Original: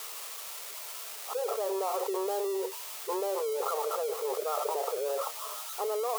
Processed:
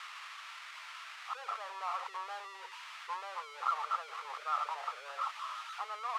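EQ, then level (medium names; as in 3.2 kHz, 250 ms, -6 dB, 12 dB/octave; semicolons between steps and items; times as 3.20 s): high-pass 1.2 kHz 24 dB/octave; low-pass 2.1 kHz 12 dB/octave; +6.0 dB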